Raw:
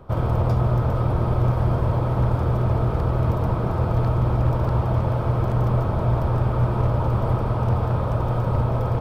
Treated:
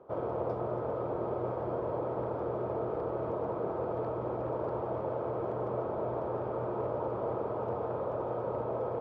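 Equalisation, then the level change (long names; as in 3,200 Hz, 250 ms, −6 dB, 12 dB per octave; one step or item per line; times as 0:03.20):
resonant band-pass 430 Hz, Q 1.8
low-shelf EQ 430 Hz −12 dB
+3.5 dB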